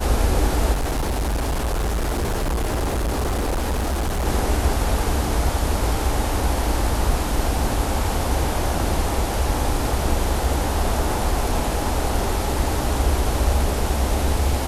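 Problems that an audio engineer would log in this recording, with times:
0:00.72–0:04.27: clipping −19.5 dBFS

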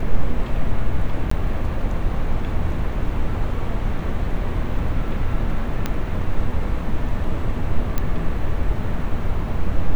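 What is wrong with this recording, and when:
0:01.30–0:01.31: drop-out 14 ms
0:05.86: click −8 dBFS
0:07.98: click −8 dBFS

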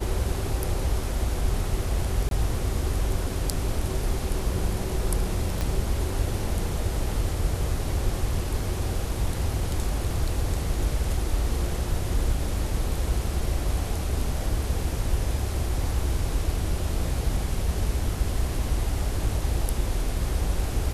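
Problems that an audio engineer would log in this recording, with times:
0:02.29–0:02.31: drop-out 22 ms
0:05.61: click −13 dBFS

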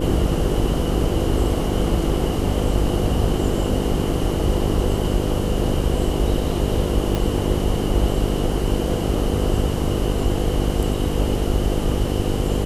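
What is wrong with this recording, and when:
mains buzz 50 Hz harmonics 10 −24 dBFS
0:07.15: click

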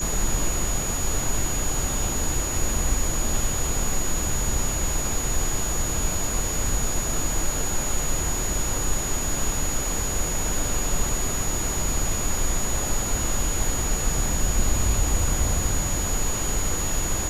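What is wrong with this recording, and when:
whistle 6,800 Hz −28 dBFS

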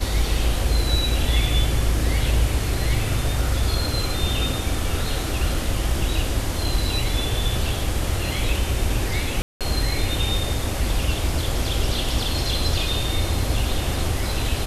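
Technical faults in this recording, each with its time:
0:09.42–0:09.61: drop-out 187 ms

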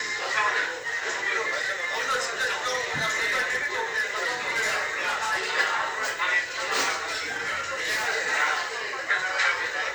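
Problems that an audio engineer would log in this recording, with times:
0:01.61–0:05.39: clipping −21.5 dBFS
0:07.10–0:08.08: clipping −23 dBFS

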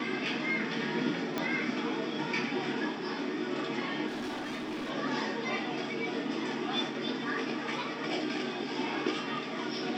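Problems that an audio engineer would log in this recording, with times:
0:01.38: click −17 dBFS
0:04.07–0:04.91: clipping −33.5 dBFS

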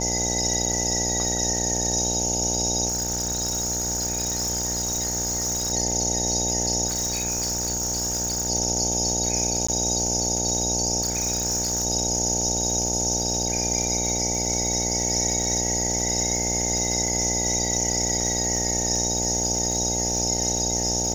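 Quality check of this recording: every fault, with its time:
mains buzz 60 Hz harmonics 15 −29 dBFS
surface crackle 110 per second −29 dBFS
0:02.88–0:05.73: clipping −22.5 dBFS
0:06.86–0:08.50: clipping −22.5 dBFS
0:09.67–0:09.69: drop-out 15 ms
0:11.01–0:11.86: clipping −20.5 dBFS

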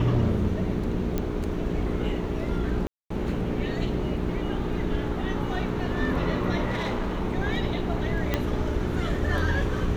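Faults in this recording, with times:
mains hum 60 Hz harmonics 7 −31 dBFS
0:01.18: click −14 dBFS
0:02.87–0:03.10: drop-out 234 ms
0:06.67–0:07.24: clipping −23.5 dBFS
0:08.34: click −10 dBFS

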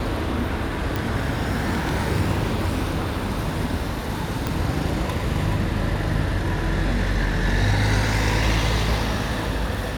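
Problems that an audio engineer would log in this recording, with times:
0:00.96: click
0:04.47: click

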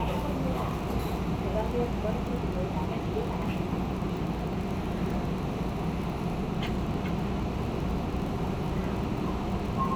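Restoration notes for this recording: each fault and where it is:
surface crackle 29 per second −35 dBFS

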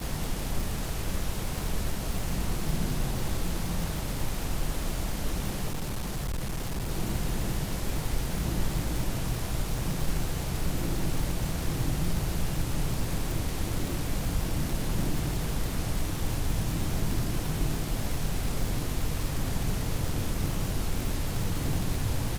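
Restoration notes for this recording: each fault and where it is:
surface crackle 260 per second −31 dBFS
0:05.72–0:06.91: clipping −27.5 dBFS

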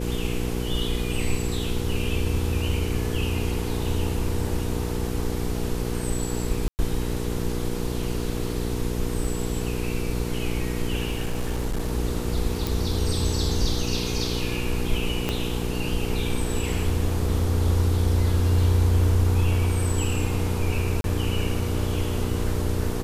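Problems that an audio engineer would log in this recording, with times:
mains hum 60 Hz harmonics 8 −29 dBFS
0:06.68–0:06.79: drop-out 109 ms
0:11.05–0:11.93: clipping −21.5 dBFS
0:12.67: click
0:15.29: click −10 dBFS
0:21.01–0:21.04: drop-out 32 ms

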